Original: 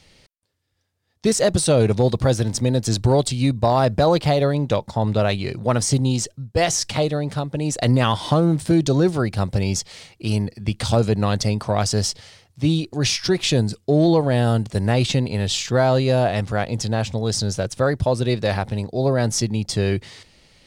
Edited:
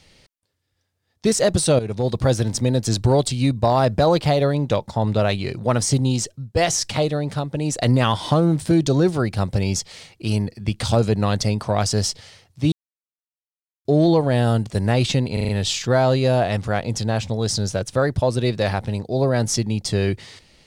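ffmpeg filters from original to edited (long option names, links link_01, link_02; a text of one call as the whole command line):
ffmpeg -i in.wav -filter_complex "[0:a]asplit=8[link_01][link_02][link_03][link_04][link_05][link_06][link_07][link_08];[link_01]atrim=end=1.79,asetpts=PTS-STARTPTS,afade=type=out:start_time=1.786:duration=0.004:curve=hsin:silence=0.211349[link_09];[link_02]atrim=start=1.79:end=12.72,asetpts=PTS-STARTPTS,afade=type=in:duration=0.48:silence=0.211349,afade=type=out:start_time=10.926:duration=0.004:curve=hsin[link_10];[link_03]atrim=start=12.72:end=13.85,asetpts=PTS-STARTPTS,volume=0[link_11];[link_04]atrim=start=13.85:end=15.372,asetpts=PTS-STARTPTS,afade=type=in:duration=0.004:curve=hsin[link_12];[link_05]atrim=start=15.328:end=15.372[link_13];[link_06]atrim=start=15.328:end=15.372[link_14];[link_07]atrim=start=15.328:end=15.372[link_15];[link_08]atrim=start=15.328[link_16];[link_09][link_10][link_11][link_12]concat=n=4:v=0:a=1[link_17];[link_17][link_13]acrossfade=duration=0.004:curve1=hsin:curve2=hsin[link_18];[link_18][link_14]acrossfade=duration=0.004:curve1=hsin:curve2=hsin[link_19];[link_19][link_15]acrossfade=duration=0.004:curve1=hsin:curve2=hsin[link_20];[link_20][link_16]acrossfade=duration=0.004:curve1=hsin:curve2=hsin" out.wav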